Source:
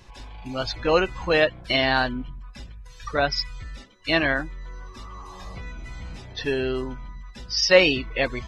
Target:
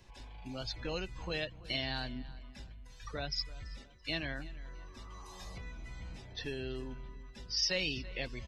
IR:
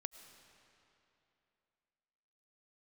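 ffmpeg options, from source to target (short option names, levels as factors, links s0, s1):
-filter_complex "[0:a]equalizer=f=1200:w=2.8:g=-4.5,acrossover=split=200|3000[s0][s1][s2];[s1]acompressor=threshold=0.0178:ratio=2.5[s3];[s0][s3][s2]amix=inputs=3:normalize=0,asettb=1/sr,asplit=3[s4][s5][s6];[s4]atrim=end=5.104[s7];[s5]atrim=start=5.1:end=5.58,asetpts=PTS-STARTPTS,afade=t=in:d=0.004:c=qsin,afade=t=out:st=0.476:d=0.004:c=qsin,highshelf=f=3600:g=10[s8];[s6]atrim=start=5.576[s9];[s7][s8]acrossfade=d=0.004:c1=hsin:c2=qsin[s10];[s10][s9]acrossfade=d=0.004:c1=qsin:c2=hsin,asplit=2[s11][s12];[s12]adelay=334,lowpass=f=3900:p=1,volume=0.126,asplit=2[s13][s14];[s14]adelay=334,lowpass=f=3900:p=1,volume=0.39,asplit=2[s15][s16];[s16]adelay=334,lowpass=f=3900:p=1,volume=0.39[s17];[s11][s13][s15][s17]amix=inputs=4:normalize=0,volume=0.355"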